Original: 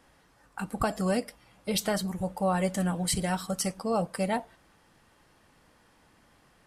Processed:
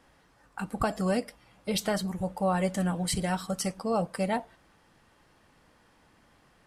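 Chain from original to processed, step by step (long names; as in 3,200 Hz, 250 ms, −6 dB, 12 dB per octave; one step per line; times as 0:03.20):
high-shelf EQ 8,100 Hz −5.5 dB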